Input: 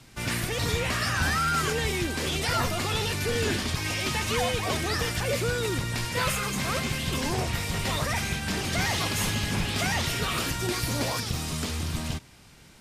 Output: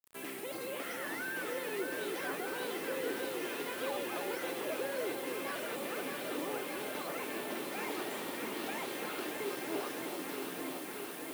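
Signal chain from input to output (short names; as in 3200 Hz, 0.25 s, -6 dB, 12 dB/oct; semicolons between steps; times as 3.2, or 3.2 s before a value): in parallel at +1 dB: compressor, threshold -36 dBFS, peak gain reduction 13.5 dB; on the sum: ladder high-pass 250 Hz, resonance 45%; varispeed +13%; air absorption 170 m; on a send: echo with dull and thin repeats by turns 0.31 s, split 930 Hz, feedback 90%, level -4 dB; on the sum: bit-crush 8-bit; resonant high shelf 7400 Hz +9.5 dB, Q 1.5; gain -5.5 dB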